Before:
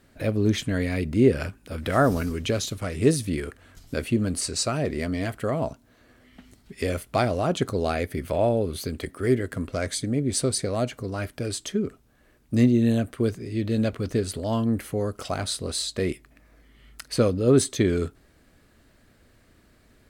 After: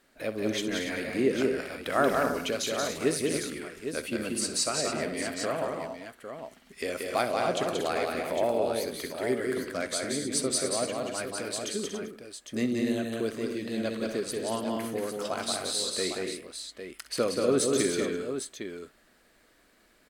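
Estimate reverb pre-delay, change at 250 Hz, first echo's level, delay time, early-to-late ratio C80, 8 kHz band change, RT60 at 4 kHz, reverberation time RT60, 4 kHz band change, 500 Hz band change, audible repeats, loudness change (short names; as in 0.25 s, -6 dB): none, -7.0 dB, -14.0 dB, 64 ms, none, 0.0 dB, none, none, 0.0 dB, -3.0 dB, 6, -4.5 dB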